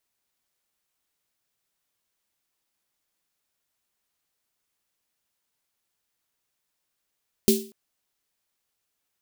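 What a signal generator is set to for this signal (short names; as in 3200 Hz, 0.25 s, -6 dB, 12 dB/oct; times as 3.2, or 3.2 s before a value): snare drum length 0.24 s, tones 220 Hz, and 390 Hz, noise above 3000 Hz, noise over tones -5 dB, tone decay 0.37 s, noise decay 0.35 s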